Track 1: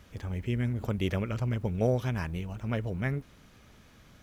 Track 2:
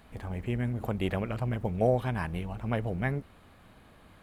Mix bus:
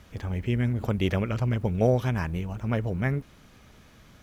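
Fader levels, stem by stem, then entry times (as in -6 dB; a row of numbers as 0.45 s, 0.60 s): +2.5 dB, -9.5 dB; 0.00 s, 0.00 s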